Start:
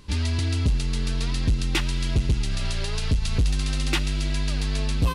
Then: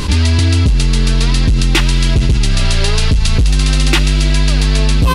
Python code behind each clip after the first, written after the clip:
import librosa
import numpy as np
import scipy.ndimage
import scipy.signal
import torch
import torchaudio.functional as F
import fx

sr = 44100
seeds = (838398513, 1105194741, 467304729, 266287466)

y = fx.env_flatten(x, sr, amount_pct=70)
y = F.gain(torch.from_numpy(y), 8.5).numpy()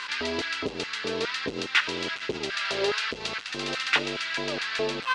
y = fx.filter_lfo_highpass(x, sr, shape='square', hz=2.4, low_hz=430.0, high_hz=1500.0, q=2.5)
y = fx.air_absorb(y, sr, metres=130.0)
y = F.gain(torch.from_numpy(y), -8.0).numpy()